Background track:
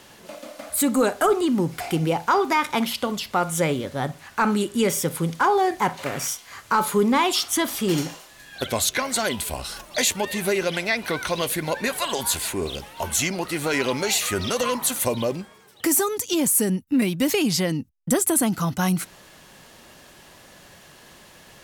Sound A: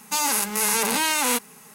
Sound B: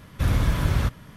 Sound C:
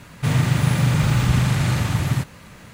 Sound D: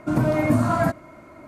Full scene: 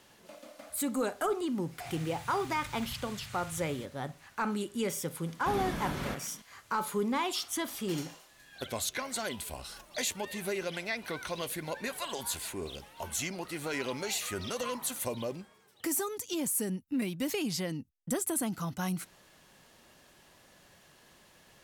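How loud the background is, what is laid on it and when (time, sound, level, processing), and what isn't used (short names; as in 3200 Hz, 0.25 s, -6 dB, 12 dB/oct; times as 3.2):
background track -11.5 dB
1.62 add C -16.5 dB + passive tone stack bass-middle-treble 10-0-10
5.26 add B -7.5 dB + resonant low shelf 140 Hz -13.5 dB, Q 1.5
not used: A, D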